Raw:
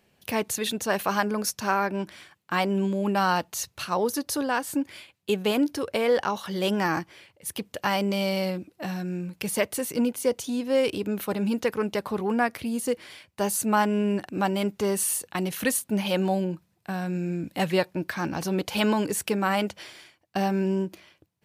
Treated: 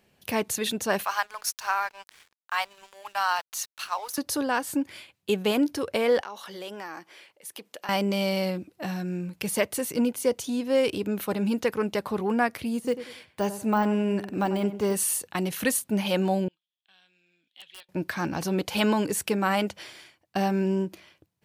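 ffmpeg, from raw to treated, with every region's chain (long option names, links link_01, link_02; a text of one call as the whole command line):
ffmpeg -i in.wav -filter_complex "[0:a]asettb=1/sr,asplit=3[link_01][link_02][link_03];[link_01]atrim=end=1.044[link_04];[link_02]atrim=start=1.04:end=4.18,asetpts=PTS-STARTPTS,afade=type=in:duration=0.004:curve=qsin,afade=type=out:start_time=3.136:duration=0.004:curve=qsin,highpass=frequency=790:width=0.5412,highpass=frequency=790:width=1.3066,aeval=exprs='sgn(val(0))*max(abs(val(0))-0.00422,0)':channel_layout=same[link_05];[link_03]atrim=start=4.176[link_06];[link_04][link_05]acrossfade=duration=0.004:curve1=hsin:curve2=qsin[link_07];[link_07][link_06]acrossfade=duration=0.004:curve1=qsin:curve2=hsin,asettb=1/sr,asplit=3[link_08][link_09][link_10];[link_08]atrim=end=6.214[link_11];[link_09]atrim=start=6.21:end=7.89,asetpts=PTS-STARTPTS,afade=type=in:duration=0.004:curve=qsin,afade=type=out:start_time=1.676:duration=0.004:curve=qsin,highpass=360,acompressor=threshold=-39dB:ratio=2.5:attack=3.2:release=140:knee=1:detection=peak[link_12];[link_10]atrim=start=7.886[link_13];[link_11][link_12]acrossfade=duration=0.004:curve1=hsin:curve2=qsin[link_14];[link_14][link_13]acrossfade=duration=0.004:curve1=qsin:curve2=hsin,asettb=1/sr,asplit=3[link_15][link_16][link_17];[link_15]atrim=end=12.754[link_18];[link_16]atrim=start=12.75:end=14.96,asetpts=PTS-STARTPTS,afade=type=in:duration=0.004:curve=qsin,afade=type=out:start_time=2.206:duration=0.004:curve=qsin,deesser=0.95,asplit=2[link_19][link_20];[link_20]adelay=95,lowpass=frequency=2100:poles=1,volume=-12dB,asplit=2[link_21][link_22];[link_22]adelay=95,lowpass=frequency=2100:poles=1,volume=0.34,asplit=2[link_23][link_24];[link_24]adelay=95,lowpass=frequency=2100:poles=1,volume=0.34[link_25];[link_19][link_21][link_23][link_25]amix=inputs=4:normalize=0,atrim=end_sample=97461[link_26];[link_17]atrim=start=14.956[link_27];[link_18][link_26]acrossfade=duration=0.004:curve1=hsin:curve2=qsin[link_28];[link_28][link_27]acrossfade=duration=0.004:curve1=qsin:curve2=hsin,asettb=1/sr,asplit=3[link_29][link_30][link_31];[link_29]atrim=end=16.484[link_32];[link_30]atrim=start=16.48:end=17.89,asetpts=PTS-STARTPTS,afade=type=in:duration=0.004:curve=qsin,afade=type=out:start_time=1.406:duration=0.004:curve=qsin,bandpass=frequency=3300:width_type=q:width=12,aeval=exprs='(mod(56.2*val(0)+1,2)-1)/56.2':channel_layout=same[link_33];[link_31]atrim=start=17.886[link_34];[link_32][link_33]acrossfade=duration=0.004:curve1=hsin:curve2=qsin[link_35];[link_35][link_34]acrossfade=duration=0.004:curve1=qsin:curve2=hsin" out.wav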